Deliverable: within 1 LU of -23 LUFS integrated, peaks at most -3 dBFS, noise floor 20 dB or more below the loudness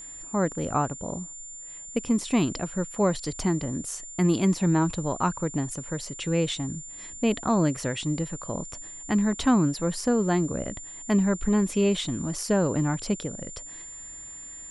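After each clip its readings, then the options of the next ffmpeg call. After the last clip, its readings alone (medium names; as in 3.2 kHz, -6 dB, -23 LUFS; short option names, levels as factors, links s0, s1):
steady tone 7.2 kHz; tone level -39 dBFS; loudness -26.5 LUFS; peak level -10.0 dBFS; loudness target -23.0 LUFS
-> -af "bandreject=f=7200:w=30"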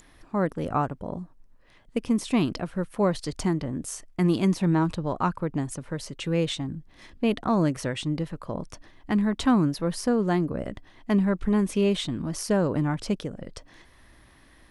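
steady tone not found; loudness -27.0 LUFS; peak level -10.0 dBFS; loudness target -23.0 LUFS
-> -af "volume=1.58"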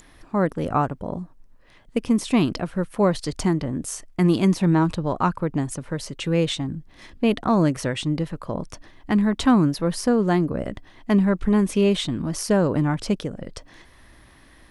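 loudness -23.0 LUFS; peak level -6.0 dBFS; noise floor -52 dBFS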